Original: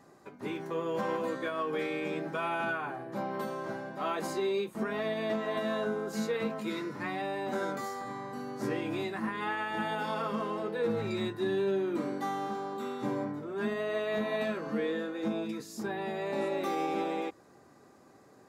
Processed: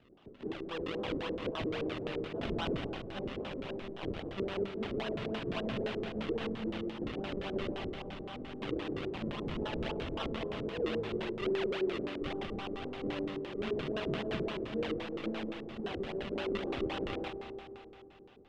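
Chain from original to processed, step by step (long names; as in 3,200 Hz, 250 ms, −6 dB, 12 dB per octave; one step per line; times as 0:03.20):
0:03.94–0:04.58: sub-harmonics by changed cycles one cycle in 2, muted
tilt shelving filter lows −3.5 dB
sample-and-hold swept by an LFO 38×, swing 100% 3.7 Hz
four-comb reverb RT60 3 s, combs from 28 ms, DRR 5 dB
auto-filter low-pass square 5.8 Hz 410–3,100 Hz
level −5 dB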